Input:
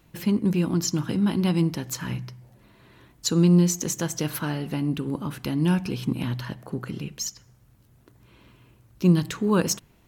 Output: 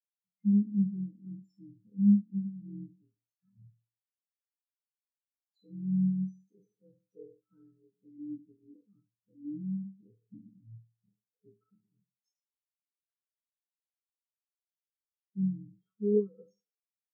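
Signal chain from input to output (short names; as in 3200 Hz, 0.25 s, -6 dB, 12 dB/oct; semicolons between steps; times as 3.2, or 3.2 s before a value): spectral trails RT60 0.65 s; LPF 5900 Hz; limiter -16 dBFS, peak gain reduction 9.5 dB; small resonant body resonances 450/1300/2100/3200 Hz, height 11 dB, ringing for 75 ms; granular stretch 1.7×, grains 48 ms; spectral expander 4:1; gain -2 dB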